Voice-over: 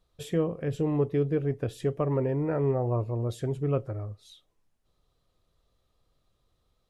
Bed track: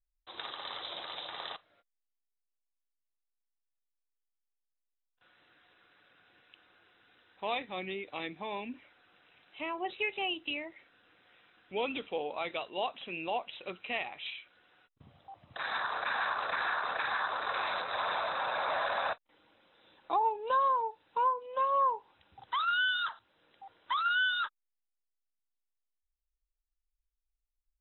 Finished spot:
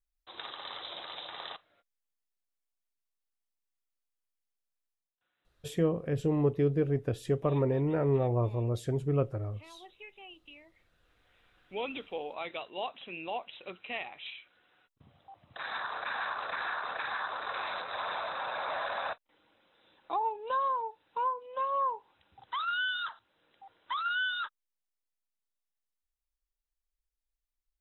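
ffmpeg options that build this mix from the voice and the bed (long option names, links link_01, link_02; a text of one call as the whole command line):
ffmpeg -i stem1.wav -i stem2.wav -filter_complex "[0:a]adelay=5450,volume=-1dB[link_01];[1:a]volume=13dB,afade=type=out:start_time=4.88:duration=0.27:silence=0.16788,afade=type=in:start_time=10.65:duration=1.04:silence=0.199526[link_02];[link_01][link_02]amix=inputs=2:normalize=0" out.wav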